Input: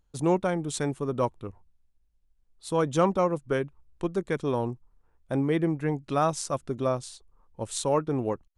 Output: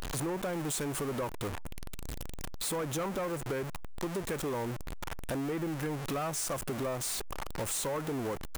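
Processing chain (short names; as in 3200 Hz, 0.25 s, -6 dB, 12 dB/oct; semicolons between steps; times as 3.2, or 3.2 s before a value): zero-crossing step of -26.5 dBFS; low shelf 420 Hz -7.5 dB; soft clip -24.5 dBFS, distortion -12 dB; dynamic EQ 4200 Hz, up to -6 dB, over -47 dBFS, Q 0.95; compressor, threshold -34 dBFS, peak gain reduction 7.5 dB; gain +2 dB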